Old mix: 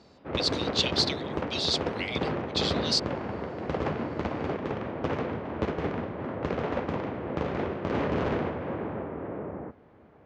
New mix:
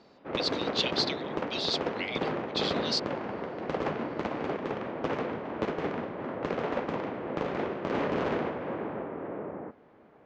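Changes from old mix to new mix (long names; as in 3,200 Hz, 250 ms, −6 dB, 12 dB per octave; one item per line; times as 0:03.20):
speech: add high-frequency loss of the air 100 metres
background: add parametric band 75 Hz −13.5 dB 1.6 octaves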